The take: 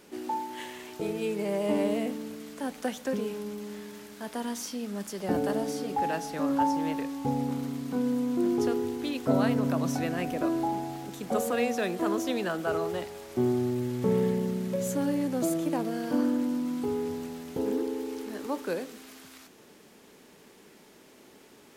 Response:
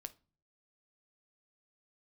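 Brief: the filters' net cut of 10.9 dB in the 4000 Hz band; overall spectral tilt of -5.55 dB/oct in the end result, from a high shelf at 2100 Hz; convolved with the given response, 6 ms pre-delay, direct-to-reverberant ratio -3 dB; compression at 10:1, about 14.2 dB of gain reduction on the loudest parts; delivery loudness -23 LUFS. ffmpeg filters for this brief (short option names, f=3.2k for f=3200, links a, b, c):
-filter_complex "[0:a]highshelf=f=2.1k:g=-7.5,equalizer=f=4k:t=o:g=-7.5,acompressor=threshold=-35dB:ratio=10,asplit=2[a][b];[1:a]atrim=start_sample=2205,adelay=6[c];[b][c]afir=irnorm=-1:irlink=0,volume=8dB[d];[a][d]amix=inputs=2:normalize=0,volume=12dB"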